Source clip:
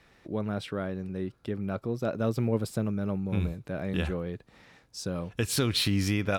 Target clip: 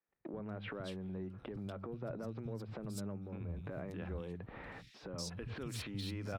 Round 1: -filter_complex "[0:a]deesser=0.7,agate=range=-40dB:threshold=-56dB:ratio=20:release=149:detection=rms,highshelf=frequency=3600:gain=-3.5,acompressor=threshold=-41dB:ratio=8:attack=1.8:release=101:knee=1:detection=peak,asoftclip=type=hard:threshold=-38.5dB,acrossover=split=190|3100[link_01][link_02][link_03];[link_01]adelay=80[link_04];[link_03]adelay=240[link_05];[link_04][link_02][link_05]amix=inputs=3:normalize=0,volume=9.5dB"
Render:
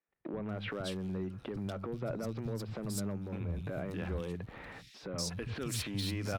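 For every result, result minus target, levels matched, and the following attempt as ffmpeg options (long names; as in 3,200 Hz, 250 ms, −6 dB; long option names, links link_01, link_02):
downward compressor: peak gain reduction −5.5 dB; 8,000 Hz band +3.5 dB
-filter_complex "[0:a]deesser=0.7,agate=range=-40dB:threshold=-56dB:ratio=20:release=149:detection=rms,highshelf=frequency=3600:gain=-3.5,acompressor=threshold=-47.5dB:ratio=8:attack=1.8:release=101:knee=1:detection=peak,asoftclip=type=hard:threshold=-38.5dB,acrossover=split=190|3100[link_01][link_02][link_03];[link_01]adelay=80[link_04];[link_03]adelay=240[link_05];[link_04][link_02][link_05]amix=inputs=3:normalize=0,volume=9.5dB"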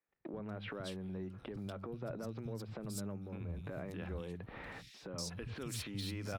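8,000 Hz band +3.5 dB
-filter_complex "[0:a]deesser=0.7,agate=range=-40dB:threshold=-56dB:ratio=20:release=149:detection=rms,highshelf=frequency=3600:gain=-13.5,acompressor=threshold=-47.5dB:ratio=8:attack=1.8:release=101:knee=1:detection=peak,asoftclip=type=hard:threshold=-38.5dB,acrossover=split=190|3100[link_01][link_02][link_03];[link_01]adelay=80[link_04];[link_03]adelay=240[link_05];[link_04][link_02][link_05]amix=inputs=3:normalize=0,volume=9.5dB"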